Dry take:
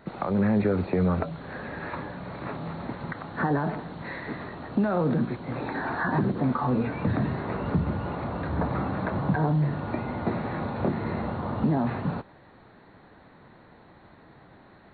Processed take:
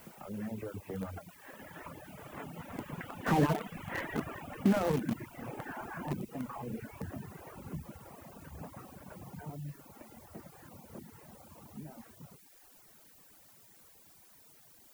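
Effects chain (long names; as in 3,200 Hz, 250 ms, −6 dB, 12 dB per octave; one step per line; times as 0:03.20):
linear delta modulator 16 kbit/s, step −35 dBFS
source passing by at 0:03.92, 13 m/s, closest 8.7 metres
mains-hum notches 60/120/180/240/300/360/420 Hz
on a send: feedback echo with a low-pass in the loop 109 ms, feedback 44%, low-pass 850 Hz, level −5 dB
on the sum: reverb reduction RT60 0.71 s
background noise blue −58 dBFS
reverb reduction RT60 0.86 s
in parallel at −9.5 dB: bit reduction 5 bits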